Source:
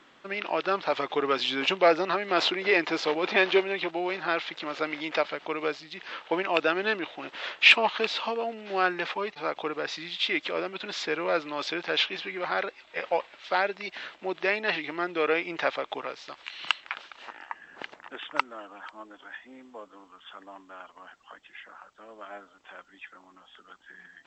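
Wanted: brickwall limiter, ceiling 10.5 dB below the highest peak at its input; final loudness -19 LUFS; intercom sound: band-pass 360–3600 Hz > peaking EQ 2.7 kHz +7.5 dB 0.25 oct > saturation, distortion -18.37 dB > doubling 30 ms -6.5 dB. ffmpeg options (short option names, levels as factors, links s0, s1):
-filter_complex "[0:a]alimiter=limit=0.178:level=0:latency=1,highpass=360,lowpass=3600,equalizer=f=2700:t=o:w=0.25:g=7.5,asoftclip=threshold=0.133,asplit=2[s0][s1];[s1]adelay=30,volume=0.473[s2];[s0][s2]amix=inputs=2:normalize=0,volume=3.35"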